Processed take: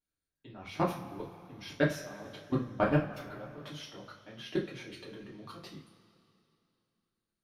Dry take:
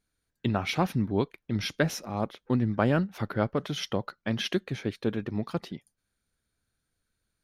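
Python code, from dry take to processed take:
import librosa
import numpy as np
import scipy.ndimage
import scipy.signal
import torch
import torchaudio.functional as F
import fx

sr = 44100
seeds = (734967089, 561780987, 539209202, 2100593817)

y = fx.level_steps(x, sr, step_db=23)
y = fx.rev_double_slope(y, sr, seeds[0], early_s=0.33, late_s=2.8, knee_db=-19, drr_db=-5.5)
y = y * librosa.db_to_amplitude(-6.0)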